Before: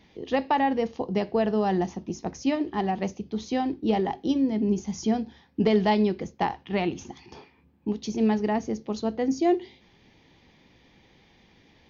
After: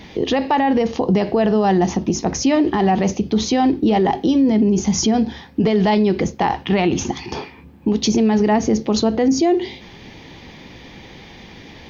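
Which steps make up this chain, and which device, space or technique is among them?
loud club master (compressor 3:1, threshold -25 dBFS, peak gain reduction 7 dB; hard clip -16.5 dBFS, distortion -54 dB; maximiser +26.5 dB); gain -8 dB

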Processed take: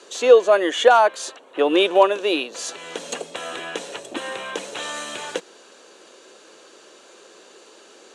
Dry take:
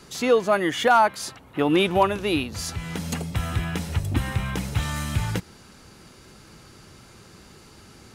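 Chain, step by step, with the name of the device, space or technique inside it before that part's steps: phone speaker on a table (speaker cabinet 380–8000 Hz, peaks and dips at 530 Hz +4 dB, 840 Hz -6 dB, 1300 Hz -6 dB, 2100 Hz -9 dB, 5000 Hz -10 dB); gain +6.5 dB

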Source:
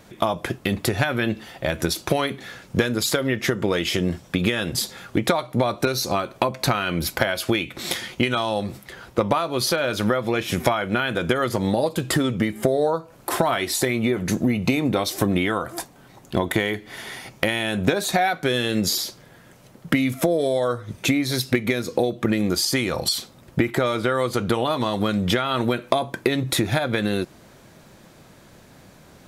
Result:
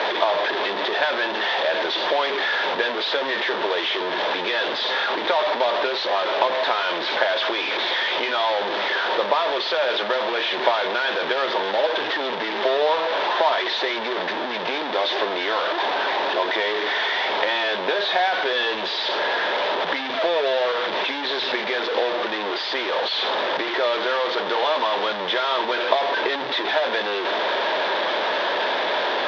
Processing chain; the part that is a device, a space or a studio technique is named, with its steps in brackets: digital answering machine (BPF 340–3200 Hz; delta modulation 32 kbps, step -16.5 dBFS; speaker cabinet 410–4300 Hz, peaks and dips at 420 Hz +6 dB, 610 Hz +7 dB, 930 Hz +9 dB, 1700 Hz +6 dB, 3500 Hz +9 dB); gain -4.5 dB

